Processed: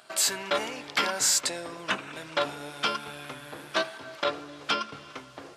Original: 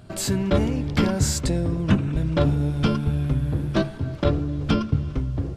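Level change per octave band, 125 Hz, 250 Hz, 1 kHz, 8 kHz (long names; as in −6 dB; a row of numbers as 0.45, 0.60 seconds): −28.5, −18.5, +2.0, +4.5 decibels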